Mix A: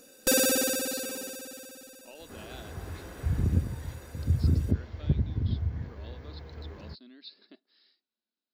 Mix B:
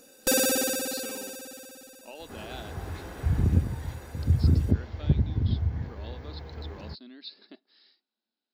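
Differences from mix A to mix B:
speech +4.5 dB; second sound +3.0 dB; master: add bell 820 Hz +5 dB 0.27 oct

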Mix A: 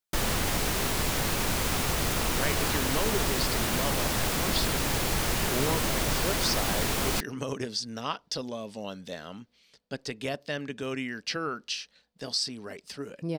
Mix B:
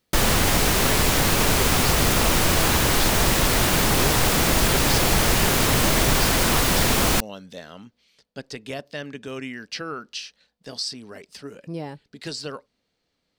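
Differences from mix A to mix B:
speech: entry -1.55 s; background +8.5 dB

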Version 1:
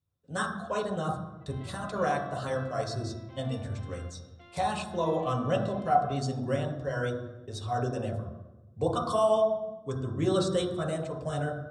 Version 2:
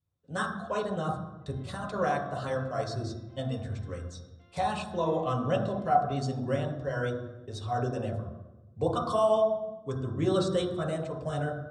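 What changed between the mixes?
background -10.0 dB; master: add high shelf 8000 Hz -8.5 dB

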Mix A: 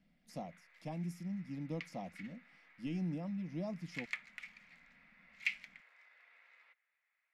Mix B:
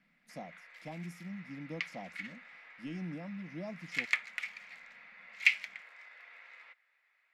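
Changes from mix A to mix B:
speech: add low shelf 110 Hz -11 dB; background +10.5 dB

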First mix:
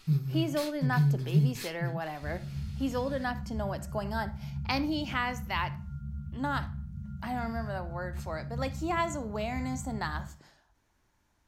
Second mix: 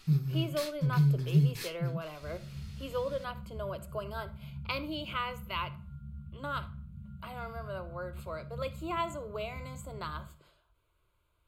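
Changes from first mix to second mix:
speech: add fixed phaser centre 1200 Hz, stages 8; second sound -6.0 dB

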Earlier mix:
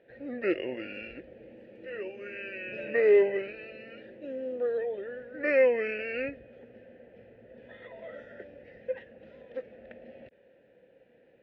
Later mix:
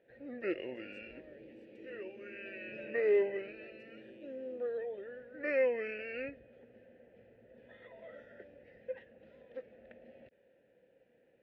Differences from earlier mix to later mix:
speech +7.5 dB; first sound -7.5 dB

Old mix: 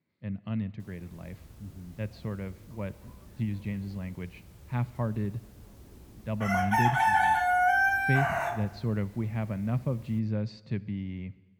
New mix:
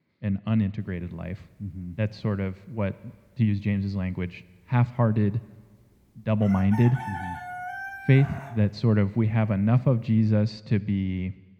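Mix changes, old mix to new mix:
speech +8.5 dB; background -11.5 dB

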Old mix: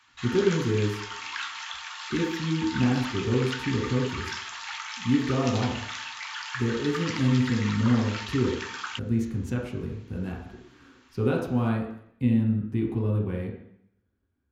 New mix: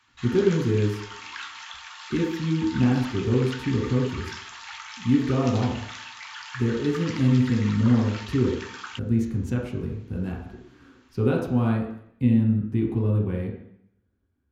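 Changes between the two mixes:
background -3.5 dB; master: add low shelf 480 Hz +3.5 dB

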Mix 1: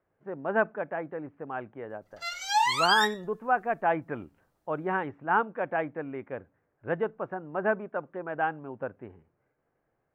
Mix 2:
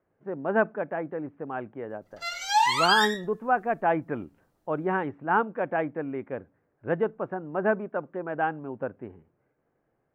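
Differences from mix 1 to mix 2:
background: send +11.0 dB; master: add bell 250 Hz +5 dB 2.3 oct

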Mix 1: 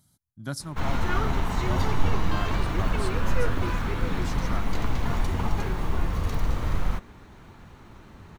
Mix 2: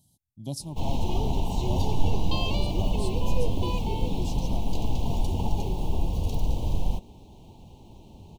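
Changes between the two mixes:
second sound +10.5 dB; master: add Chebyshev band-stop 880–2800 Hz, order 3

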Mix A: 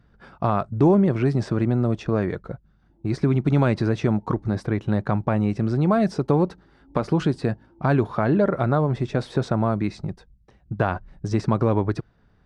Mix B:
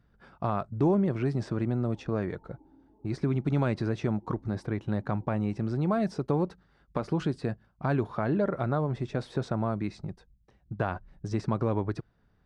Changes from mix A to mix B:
speech -7.5 dB; background: entry -1.80 s

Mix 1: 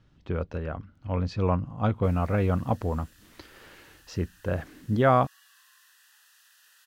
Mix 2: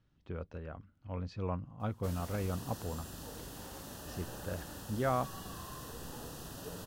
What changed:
speech -11.5 dB; background: remove ladder high-pass 1600 Hz, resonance 55%

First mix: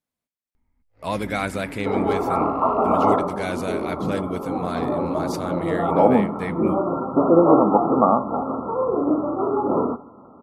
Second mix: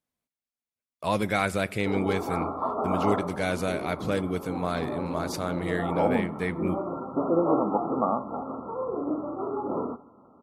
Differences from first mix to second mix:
first sound: muted; second sound -9.0 dB

